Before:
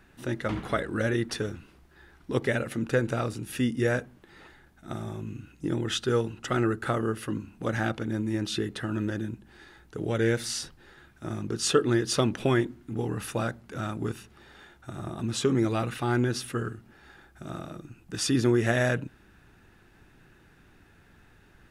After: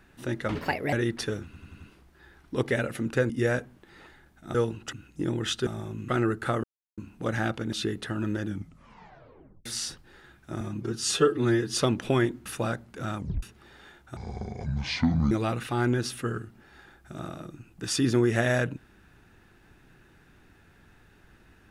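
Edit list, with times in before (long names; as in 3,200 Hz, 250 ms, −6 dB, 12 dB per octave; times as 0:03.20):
0:00.55–0:01.05: play speed 133%
0:01.57: stutter 0.09 s, 5 plays
0:03.06–0:03.70: remove
0:04.95–0:05.37: swap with 0:06.11–0:06.49
0:07.04–0:07.38: silence
0:08.13–0:08.46: remove
0:09.18: tape stop 1.21 s
0:11.34–0:12.10: time-stretch 1.5×
0:12.81–0:13.21: remove
0:13.93: tape stop 0.25 s
0:14.92–0:15.62: play speed 61%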